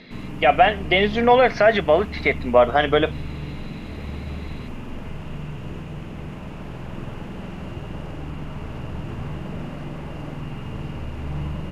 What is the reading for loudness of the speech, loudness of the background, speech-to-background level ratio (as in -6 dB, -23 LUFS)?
-18.0 LUFS, -33.5 LUFS, 15.5 dB